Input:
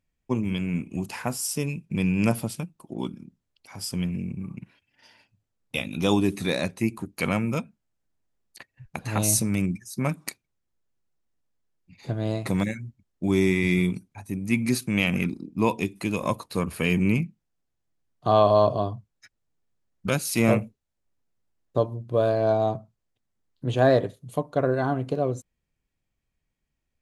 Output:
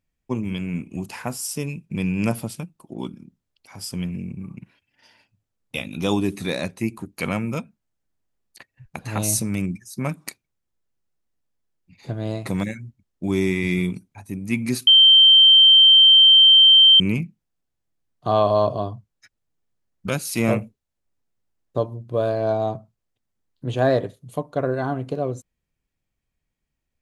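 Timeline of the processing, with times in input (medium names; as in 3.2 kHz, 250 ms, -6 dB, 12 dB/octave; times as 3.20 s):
14.87–17.00 s: bleep 3.13 kHz -8 dBFS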